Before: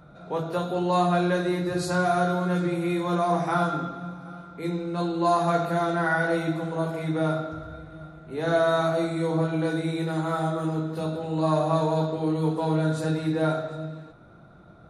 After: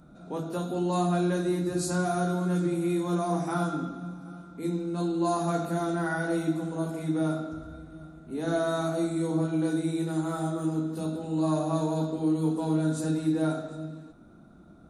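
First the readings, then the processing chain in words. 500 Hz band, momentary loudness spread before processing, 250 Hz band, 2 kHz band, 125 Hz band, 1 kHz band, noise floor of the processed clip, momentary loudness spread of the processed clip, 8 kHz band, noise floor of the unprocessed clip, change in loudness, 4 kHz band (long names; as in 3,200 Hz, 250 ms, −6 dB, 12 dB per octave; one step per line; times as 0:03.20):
−5.0 dB, 12 LU, 0.0 dB, −7.5 dB, −3.0 dB, −7.0 dB, −52 dBFS, 11 LU, +3.5 dB, −50 dBFS, −3.0 dB, −5.5 dB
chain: graphic EQ with 10 bands 125 Hz −9 dB, 250 Hz +8 dB, 500 Hz −7 dB, 1,000 Hz −5 dB, 2,000 Hz −8 dB, 4,000 Hz −5 dB, 8,000 Hz +6 dB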